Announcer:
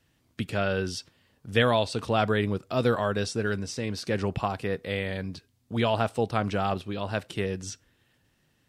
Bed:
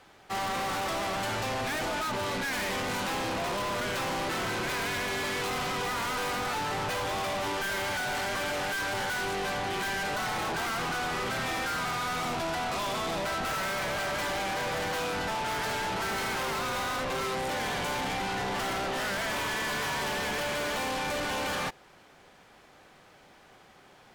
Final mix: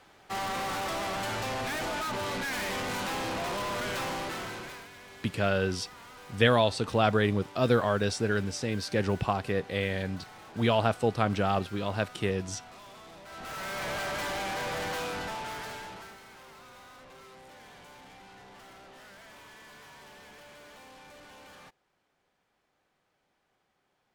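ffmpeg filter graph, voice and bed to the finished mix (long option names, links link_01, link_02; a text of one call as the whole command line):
ffmpeg -i stem1.wav -i stem2.wav -filter_complex "[0:a]adelay=4850,volume=0dB[link_01];[1:a]volume=14.5dB,afade=type=out:start_time=4.02:duration=0.86:silence=0.149624,afade=type=in:start_time=13.25:duration=0.66:silence=0.158489,afade=type=out:start_time=14.93:duration=1.26:silence=0.125893[link_02];[link_01][link_02]amix=inputs=2:normalize=0" out.wav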